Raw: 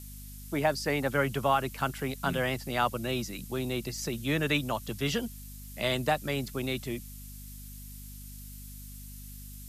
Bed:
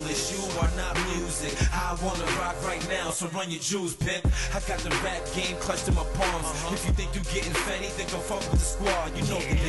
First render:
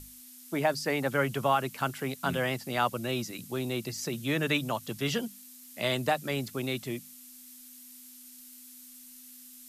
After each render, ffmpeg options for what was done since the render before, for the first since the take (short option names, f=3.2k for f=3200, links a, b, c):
-af "bandreject=f=50:t=h:w=6,bandreject=f=100:t=h:w=6,bandreject=f=150:t=h:w=6,bandreject=f=200:t=h:w=6"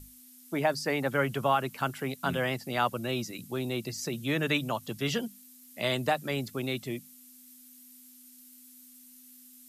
-af "afftdn=nr=6:nf=-51"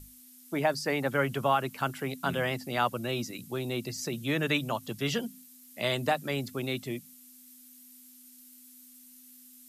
-af "bandreject=f=85.29:t=h:w=4,bandreject=f=170.58:t=h:w=4,bandreject=f=255.87:t=h:w=4"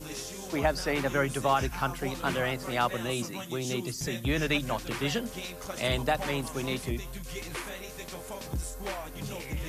-filter_complex "[1:a]volume=-10dB[a];[0:a][a]amix=inputs=2:normalize=0"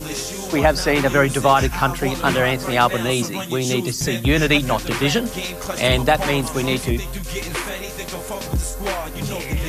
-af "volume=11.5dB,alimiter=limit=-3dB:level=0:latency=1"